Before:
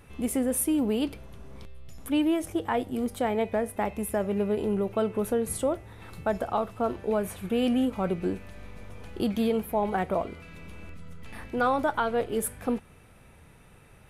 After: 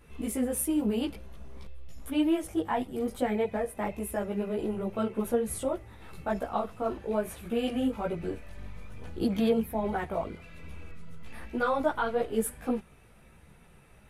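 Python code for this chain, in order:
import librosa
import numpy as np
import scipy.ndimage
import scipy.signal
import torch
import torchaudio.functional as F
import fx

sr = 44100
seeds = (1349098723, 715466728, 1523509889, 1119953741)

y = fx.chorus_voices(x, sr, voices=4, hz=1.2, base_ms=16, depth_ms=3.4, mix_pct=55)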